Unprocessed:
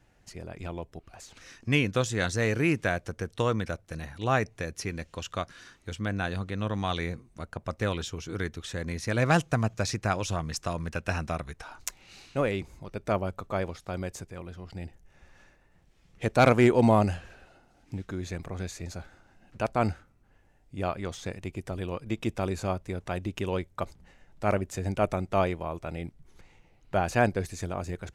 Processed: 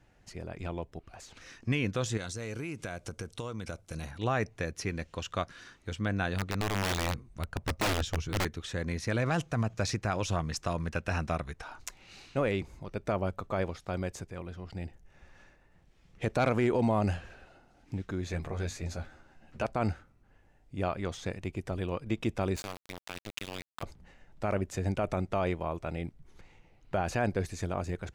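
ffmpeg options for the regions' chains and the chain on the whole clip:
-filter_complex "[0:a]asettb=1/sr,asplit=3[s0][s1][s2];[s0]atrim=end=2.174[s3];[s1]atrim=start=2.17:end=4.11,asetpts=PTS-STARTPTS,afade=t=in:d=0.004:c=qsin,afade=t=out:st=1.936:d=0.004:c=qsin,equalizer=f=9100:t=o:w=1.6:g=9.5,bandreject=f=1800:w=7.2,acompressor=threshold=0.0224:ratio=12:attack=3.2:release=140:knee=1:detection=peak[s4];[s2]atrim=start=4.106[s5];[s3][s4]acrossfade=d=0.004:c1=hsin:c2=qsin[s6];[s6][s5]acrossfade=d=0.004:c1=qsin:c2=hsin,asettb=1/sr,asplit=3[s7][s8][s9];[s7]atrim=end=6.354[s10];[s8]atrim=start=6.35:end=8.45,asetpts=PTS-STARTPTS,afade=t=in:d=0.004:c=qsin,afade=t=out:st=2.096:d=0.004:c=qsin,asubboost=boost=5:cutoff=150,aeval=exprs='(mod(14.1*val(0)+1,2)-1)/14.1':c=same[s11];[s9]atrim=start=8.446[s12];[s10][s11]acrossfade=d=0.004:c1=hsin:c2=qsin[s13];[s13][s12]acrossfade=d=0.004:c1=qsin:c2=hsin,asettb=1/sr,asplit=3[s14][s15][s16];[s14]atrim=end=18.284[s17];[s15]atrim=start=18.28:end=19.65,asetpts=PTS-STARTPTS,afade=t=in:d=0.004:c=qsin,afade=t=out:st=1.366:d=0.004:c=qsin,bandreject=f=50:t=h:w=6,bandreject=f=100:t=h:w=6,bandreject=f=150:t=h:w=6,bandreject=f=200:t=h:w=6,bandreject=f=250:t=h:w=6,bandreject=f=300:t=h:w=6,asplit=2[s18][s19];[s19]adelay=13,volume=0.562[s20];[s18][s20]amix=inputs=2:normalize=0,atrim=end_sample=60417[s21];[s16]atrim=start=19.646[s22];[s17][s21]acrossfade=d=0.004:c1=hsin:c2=qsin[s23];[s23][s22]acrossfade=d=0.004:c1=qsin:c2=hsin,asettb=1/sr,asplit=3[s24][s25][s26];[s24]atrim=end=22.564[s27];[s25]atrim=start=22.56:end=23.83,asetpts=PTS-STARTPTS,afade=t=in:d=0.004:c=qsin,afade=t=out:st=1.266:d=0.004:c=qsin,tiltshelf=f=1500:g=-7.5,acrossover=split=170|3000[s28][s29][s30];[s29]acompressor=threshold=0.0126:ratio=2.5:attack=3.2:release=140:knee=2.83:detection=peak[s31];[s28][s31][s30]amix=inputs=3:normalize=0,aeval=exprs='val(0)*gte(abs(val(0)),0.0224)':c=same[s32];[s26]atrim=start=23.826[s33];[s27][s32]acrossfade=d=0.004:c1=hsin:c2=qsin[s34];[s34][s33]acrossfade=d=0.004:c1=qsin:c2=hsin,highshelf=f=7600:g=-7,alimiter=limit=0.112:level=0:latency=1:release=42"

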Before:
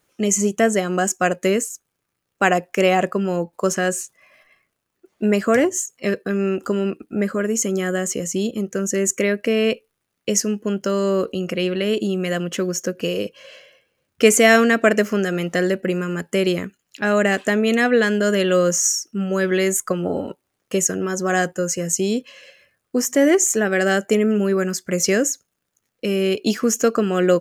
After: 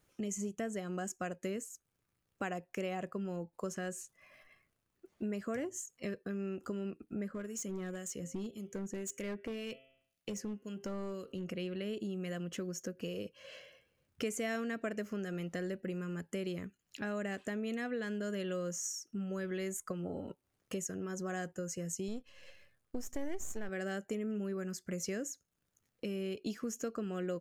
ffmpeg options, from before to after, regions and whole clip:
-filter_complex "[0:a]asettb=1/sr,asplit=3[s0][s1][s2];[s0]atrim=end=7.284[s3];[s1]atrim=start=7.28:end=11.46,asetpts=PTS-STARTPTS,afade=t=in:d=0.004:c=qsin,afade=t=out:st=4.176:d=0.004:c=qsin,acrossover=split=2400[s4][s5];[s4]aeval=exprs='val(0)*(1-0.7/2+0.7/2*cos(2*PI*1.9*n/s))':c=same[s6];[s5]aeval=exprs='val(0)*(1-0.7/2-0.7/2*cos(2*PI*1.9*n/s))':c=same[s7];[s6][s7]amix=inputs=2:normalize=0,bandreject=f=132.9:t=h:w=4,bandreject=f=265.8:t=h:w=4,bandreject=f=398.7:t=h:w=4,bandreject=f=531.6:t=h:w=4,bandreject=f=664.5:t=h:w=4,bandreject=f=797.4:t=h:w=4,bandreject=f=930.3:t=h:w=4,bandreject=f=1063.2:t=h:w=4,bandreject=f=1196.1:t=h:w=4,bandreject=f=1329:t=h:w=4,bandreject=f=1461.9:t=h:w=4,bandreject=f=1594.8:t=h:w=4,bandreject=f=1727.7:t=h:w=4,bandreject=f=1860.6:t=h:w=4,bandreject=f=1993.5:t=h:w=4,bandreject=f=2126.4:t=h:w=4,bandreject=f=2259.3:t=h:w=4,bandreject=f=2392.2:t=h:w=4,bandreject=f=2525.1:t=h:w=4,bandreject=f=2658:t=h:w=4,bandreject=f=2790.9:t=h:w=4,bandreject=f=2923.8:t=h:w=4,bandreject=f=3056.7:t=h:w=4,bandreject=f=3189.6:t=h:w=4,bandreject=f=3322.5:t=h:w=4,bandreject=f=3455.4:t=h:w=4,bandreject=f=3588.3:t=h:w=4,bandreject=f=3721.2:t=h:w=4,volume=9.44,asoftclip=hard,volume=0.106[s8];[s2]atrim=start=11.456[s9];[s3][s8]acrossfade=d=0.004:c1=hsin:c2=qsin[s10];[s10][s9]acrossfade=d=0.004:c1=qsin:c2=hsin,asettb=1/sr,asplit=3[s11][s12][s13];[s11]atrim=end=22.084[s14];[s12]atrim=start=22.08:end=23.69,asetpts=PTS-STARTPTS,afade=t=in:d=0.004:c=qsin,afade=t=out:st=1.606:d=0.004:c=qsin,aeval=exprs='if(lt(val(0),0),0.447*val(0),val(0))':c=same,asubboost=boost=2.5:cutoff=61[s15];[s13]atrim=start=23.686[s16];[s14][s15]acrossfade=d=0.004:c1=hsin:c2=qsin[s17];[s17][s16]acrossfade=d=0.004:c1=qsin:c2=hsin,lowshelf=f=160:g=11.5,acompressor=threshold=0.0178:ratio=2.5,volume=0.398"

